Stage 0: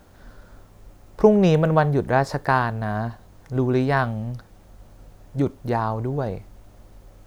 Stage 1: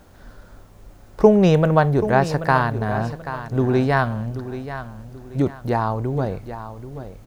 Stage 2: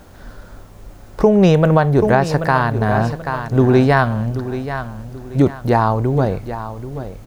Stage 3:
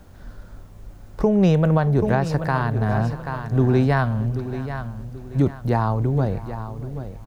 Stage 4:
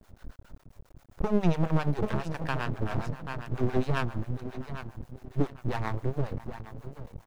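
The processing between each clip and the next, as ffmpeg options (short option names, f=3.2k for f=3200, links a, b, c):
-af "aecho=1:1:783|1566|2349:0.251|0.0829|0.0274,volume=2dB"
-af "alimiter=limit=-9dB:level=0:latency=1:release=272,volume=6.5dB"
-filter_complex "[0:a]aecho=1:1:629:0.106,acrossover=split=220[a][b];[a]acontrast=63[c];[c][b]amix=inputs=2:normalize=0,volume=-8dB"
-filter_complex "[0:a]acrossover=split=620[a][b];[a]aeval=exprs='val(0)*(1-1/2+1/2*cos(2*PI*7.4*n/s))':c=same[c];[b]aeval=exprs='val(0)*(1-1/2-1/2*cos(2*PI*7.4*n/s))':c=same[d];[c][d]amix=inputs=2:normalize=0,aeval=exprs='max(val(0),0)':c=same"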